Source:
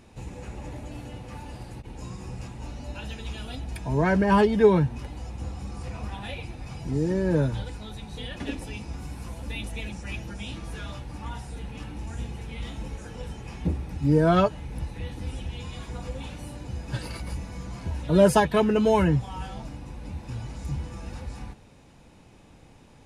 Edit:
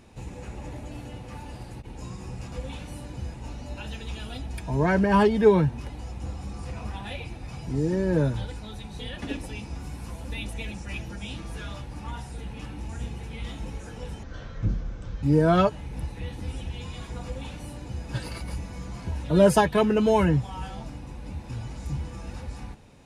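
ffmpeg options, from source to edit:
ffmpeg -i in.wav -filter_complex "[0:a]asplit=5[link_01][link_02][link_03][link_04][link_05];[link_01]atrim=end=2.522[link_06];[link_02]atrim=start=16.028:end=16.852[link_07];[link_03]atrim=start=2.518:end=13.414[link_08];[link_04]atrim=start=13.41:end=14.02,asetpts=PTS-STARTPTS,asetrate=26901,aresample=44100[link_09];[link_05]atrim=start=14.016[link_10];[link_06][link_07]acrossfade=duration=0.004:curve1=hsin:curve2=hsin[link_11];[link_11][link_08]acrossfade=duration=0.004:curve1=hsin:curve2=hsin[link_12];[link_12][link_09]acrossfade=duration=0.004:curve1=hsin:curve2=hsin[link_13];[link_13][link_10]acrossfade=duration=0.004:curve1=hsin:curve2=hsin" out.wav

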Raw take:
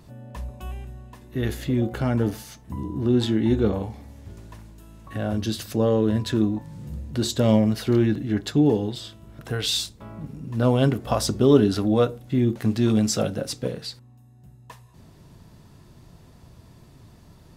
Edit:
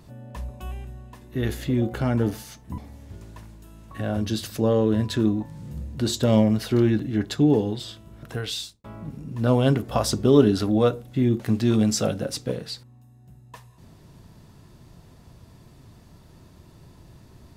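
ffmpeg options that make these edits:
ffmpeg -i in.wav -filter_complex "[0:a]asplit=3[link_01][link_02][link_03];[link_01]atrim=end=2.782[link_04];[link_02]atrim=start=3.938:end=10,asetpts=PTS-STARTPTS,afade=type=out:start_time=5.462:duration=0.6[link_05];[link_03]atrim=start=10,asetpts=PTS-STARTPTS,afade=type=in:duration=0.004:curve=hsin[link_06];[link_05][link_06]concat=n=2:v=0:a=1[link_07];[link_04][link_07]acrossfade=duration=0.004:curve1=hsin:curve2=hsin" out.wav

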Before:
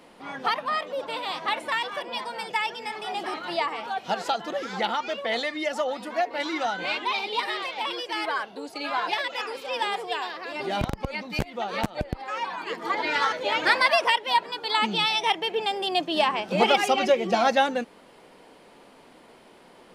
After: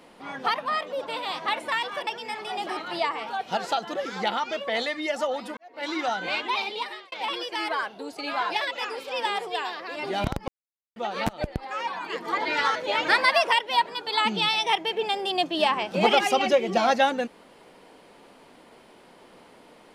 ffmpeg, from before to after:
ffmpeg -i in.wav -filter_complex "[0:a]asplit=6[link_01][link_02][link_03][link_04][link_05][link_06];[link_01]atrim=end=2.072[link_07];[link_02]atrim=start=2.638:end=6.14,asetpts=PTS-STARTPTS,afade=type=out:start_time=3.498:duration=0.004:curve=hsin[link_08];[link_03]atrim=start=6.14:end=7.69,asetpts=PTS-STARTPTS,afade=type=in:duration=0.32:curve=qua,afade=type=out:start_time=1.05:duration=0.5[link_09];[link_04]atrim=start=7.69:end=11.05,asetpts=PTS-STARTPTS,afade=type=in:duration=0.004:curve=hsin,afade=type=out:start_time=3.356:duration=0.004:curve=hsin[link_10];[link_05]atrim=start=11.05:end=11.53,asetpts=PTS-STARTPTS,volume=0[link_11];[link_06]atrim=start=11.53,asetpts=PTS-STARTPTS,afade=type=in:duration=0.004:curve=hsin[link_12];[link_08][link_09][link_10][link_11][link_12]concat=n=5:v=0:a=1[link_13];[link_07][link_13]acrossfade=duration=0.004:curve1=hsin:curve2=hsin" out.wav

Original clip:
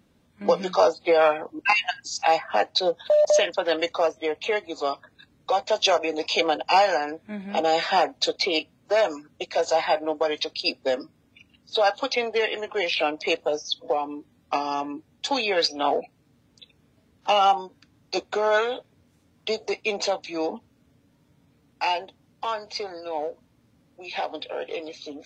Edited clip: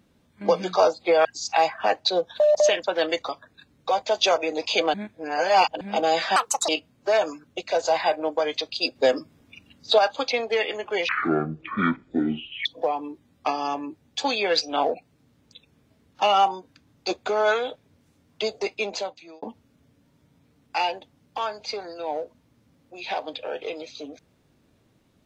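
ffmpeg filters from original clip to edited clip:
ffmpeg -i in.wav -filter_complex "[0:a]asplit=12[link_01][link_02][link_03][link_04][link_05][link_06][link_07][link_08][link_09][link_10][link_11][link_12];[link_01]atrim=end=1.252[link_13];[link_02]atrim=start=1.948:end=3.992[link_14];[link_03]atrim=start=4.898:end=6.552[link_15];[link_04]atrim=start=6.548:end=7.422,asetpts=PTS-STARTPTS,areverse[link_16];[link_05]atrim=start=7.418:end=7.974[link_17];[link_06]atrim=start=7.97:end=8.52,asetpts=PTS-STARTPTS,asetrate=74529,aresample=44100,atrim=end_sample=14352,asetpts=PTS-STARTPTS[link_18];[link_07]atrim=start=8.516:end=10.792[link_19];[link_08]atrim=start=10.788:end=11.822,asetpts=PTS-STARTPTS,volume=5dB[link_20];[link_09]atrim=start=11.818:end=12.924[link_21];[link_10]atrim=start=12.92:end=13.72,asetpts=PTS-STARTPTS,asetrate=22491,aresample=44100,atrim=end_sample=69176,asetpts=PTS-STARTPTS[link_22];[link_11]atrim=start=13.716:end=20.49,asetpts=PTS-STARTPTS,afade=type=out:start_time=6.054:duration=0.72[link_23];[link_12]atrim=start=20.49,asetpts=PTS-STARTPTS,afade=type=in:duration=0.004:curve=hsin[link_24];[link_13][link_14]acrossfade=duration=0.004:curve1=hsin:curve2=hsin[link_25];[link_25][link_15]acrossfade=duration=0.004:curve1=hsin:curve2=hsin[link_26];[link_26][link_16]acrossfade=duration=0.004:curve1=hsin:curve2=hsin[link_27];[link_27][link_17]acrossfade=duration=0.004:curve1=hsin:curve2=hsin[link_28];[link_28][link_18]acrossfade=duration=0.004:curve1=hsin:curve2=hsin[link_29];[link_29][link_19]acrossfade=duration=0.004:curve1=hsin:curve2=hsin[link_30];[link_30][link_20]acrossfade=duration=0.004:curve1=hsin:curve2=hsin[link_31];[link_31][link_21]acrossfade=duration=0.004:curve1=hsin:curve2=hsin[link_32];[link_32][link_22]acrossfade=duration=0.004:curve1=hsin:curve2=hsin[link_33];[link_23][link_24]concat=n=2:v=0:a=1[link_34];[link_33][link_34]acrossfade=duration=0.004:curve1=hsin:curve2=hsin" out.wav

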